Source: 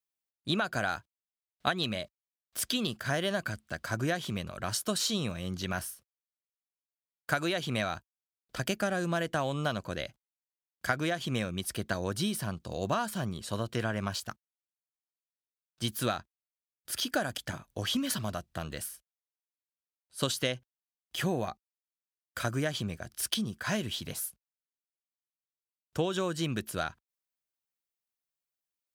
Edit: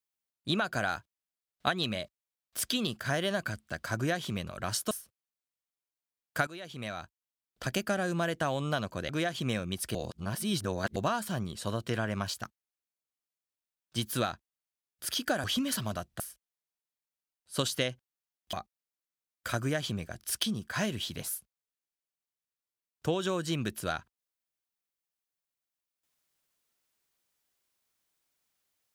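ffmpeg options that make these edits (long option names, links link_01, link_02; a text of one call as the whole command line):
ffmpeg -i in.wav -filter_complex "[0:a]asplit=9[link_01][link_02][link_03][link_04][link_05][link_06][link_07][link_08][link_09];[link_01]atrim=end=4.912[link_10];[link_02]atrim=start=5.838:end=7.4,asetpts=PTS-STARTPTS,afade=type=out:start_time=1.558:duration=0.004:curve=hsin:silence=0.149624[link_11];[link_03]atrim=start=7.4:end=10.022,asetpts=PTS-STARTPTS,afade=type=in:duration=1.19:silence=0.149624[link_12];[link_04]atrim=start=10.948:end=11.812[link_13];[link_05]atrim=start=11.808:end=12.822,asetpts=PTS-STARTPTS,areverse[link_14];[link_06]atrim=start=12.818:end=17.302[link_15];[link_07]atrim=start=17.818:end=18.582[link_16];[link_08]atrim=start=18.838:end=21.172[link_17];[link_09]atrim=start=21.438[link_18];[link_11][link_12]concat=n=2:v=0:a=1[link_19];[link_10][link_19]acrossfade=duration=0.004:curve1=hsin:curve2=hsin[link_20];[link_20][link_13]acrossfade=duration=0.004:curve1=hsin:curve2=hsin[link_21];[link_21][link_14]acrossfade=duration=0.004:curve1=hsin:curve2=hsin[link_22];[link_22][link_15]acrossfade=duration=0.004:curve1=hsin:curve2=hsin[link_23];[link_23][link_16]acrossfade=duration=0.004:curve1=hsin:curve2=hsin[link_24];[link_24][link_17]acrossfade=duration=0.004:curve1=hsin:curve2=hsin[link_25];[link_25][link_18]acrossfade=duration=0.004:curve1=hsin:curve2=hsin" out.wav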